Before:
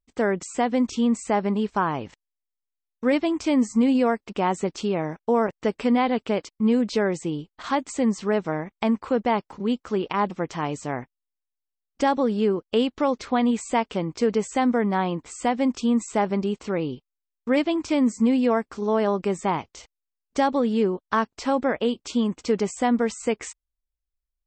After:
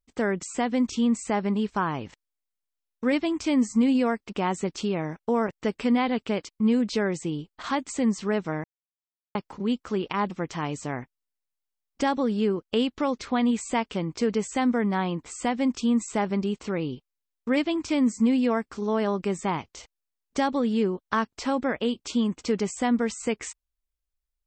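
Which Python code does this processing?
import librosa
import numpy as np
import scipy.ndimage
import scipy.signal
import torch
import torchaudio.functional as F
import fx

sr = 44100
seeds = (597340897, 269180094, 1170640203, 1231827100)

y = fx.edit(x, sr, fx.silence(start_s=8.64, length_s=0.71), tone=tone)
y = fx.dynamic_eq(y, sr, hz=640.0, q=0.71, threshold_db=-34.0, ratio=4.0, max_db=-5)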